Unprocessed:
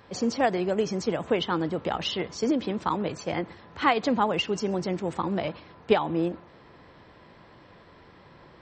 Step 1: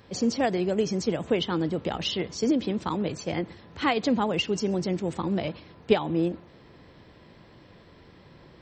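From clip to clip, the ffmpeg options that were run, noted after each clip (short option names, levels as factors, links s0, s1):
-af "equalizer=f=1100:w=0.64:g=-8,volume=1.41"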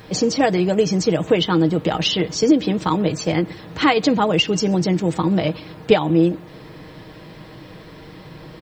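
-filter_complex "[0:a]aecho=1:1:6.4:0.51,asplit=2[s0][s1];[s1]acompressor=threshold=0.0224:ratio=6,volume=1[s2];[s0][s2]amix=inputs=2:normalize=0,acrusher=bits=10:mix=0:aa=0.000001,volume=1.88"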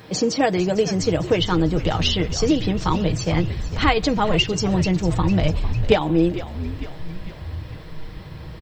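-filter_complex "[0:a]highpass=63,asplit=7[s0][s1][s2][s3][s4][s5][s6];[s1]adelay=451,afreqshift=-81,volume=0.211[s7];[s2]adelay=902,afreqshift=-162,volume=0.12[s8];[s3]adelay=1353,afreqshift=-243,volume=0.0684[s9];[s4]adelay=1804,afreqshift=-324,volume=0.0394[s10];[s5]adelay=2255,afreqshift=-405,volume=0.0224[s11];[s6]adelay=2706,afreqshift=-486,volume=0.0127[s12];[s0][s7][s8][s9][s10][s11][s12]amix=inputs=7:normalize=0,asubboost=boost=8:cutoff=100,volume=0.841"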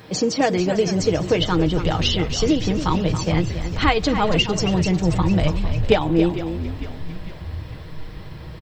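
-af "aecho=1:1:278:0.299"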